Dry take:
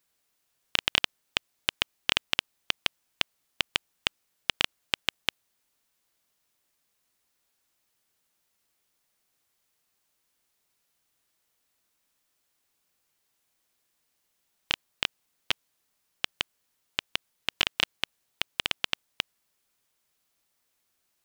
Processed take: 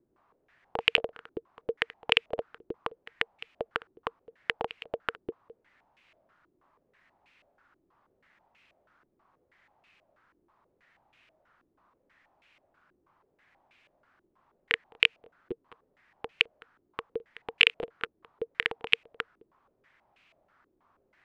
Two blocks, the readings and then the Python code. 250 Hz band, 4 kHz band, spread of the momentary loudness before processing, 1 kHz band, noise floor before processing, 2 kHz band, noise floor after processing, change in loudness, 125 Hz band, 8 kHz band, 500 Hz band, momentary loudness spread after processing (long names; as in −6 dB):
+0.5 dB, −3.0 dB, 9 LU, +0.5 dB, −76 dBFS, +3.0 dB, −74 dBFS, +1.0 dB, −4.5 dB, below −15 dB, +8.0 dB, 19 LU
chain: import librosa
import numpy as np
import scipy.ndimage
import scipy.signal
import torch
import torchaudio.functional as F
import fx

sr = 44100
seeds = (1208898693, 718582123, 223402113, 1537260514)

y = fx.notch(x, sr, hz=460.0, q=12.0)
y = fx.fold_sine(y, sr, drive_db=15, ceiling_db=-2.0)
y = y + 10.0 ** (-19.5 / 20.0) * np.pad(y, (int(211 * sr / 1000.0), 0))[:len(y)]
y = fx.filter_held_lowpass(y, sr, hz=6.2, low_hz=360.0, high_hz=2500.0)
y = F.gain(torch.from_numpy(y), -6.5).numpy()